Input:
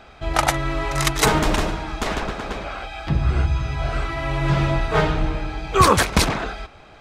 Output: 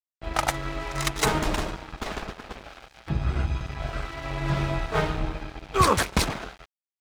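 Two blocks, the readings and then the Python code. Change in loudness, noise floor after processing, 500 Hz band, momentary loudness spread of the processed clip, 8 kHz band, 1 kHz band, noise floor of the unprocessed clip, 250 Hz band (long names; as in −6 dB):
−6.0 dB, below −85 dBFS, −6.5 dB, 15 LU, −6.0 dB, −6.0 dB, −46 dBFS, −6.5 dB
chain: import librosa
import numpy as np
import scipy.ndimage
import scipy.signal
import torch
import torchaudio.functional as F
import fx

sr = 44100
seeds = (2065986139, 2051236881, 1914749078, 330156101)

y = fx.env_lowpass(x, sr, base_hz=2200.0, full_db=-16.0)
y = np.sign(y) * np.maximum(np.abs(y) - 10.0 ** (-29.5 / 20.0), 0.0)
y = y * librosa.db_to_amplitude(-4.5)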